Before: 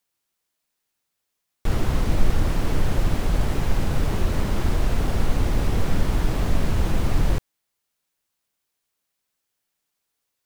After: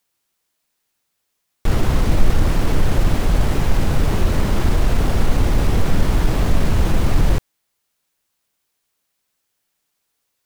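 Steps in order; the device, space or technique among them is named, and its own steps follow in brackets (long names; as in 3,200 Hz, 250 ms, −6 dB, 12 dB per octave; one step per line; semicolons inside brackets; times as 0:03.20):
parallel distortion (in parallel at −11 dB: hard clipping −18 dBFS, distortion −10 dB)
on the sum: level +3.5 dB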